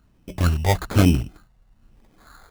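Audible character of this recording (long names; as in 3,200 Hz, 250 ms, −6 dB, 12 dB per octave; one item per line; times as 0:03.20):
phaser sweep stages 4, 1.1 Hz, lowest notch 300–1,400 Hz
aliases and images of a low sample rate 2,800 Hz, jitter 0%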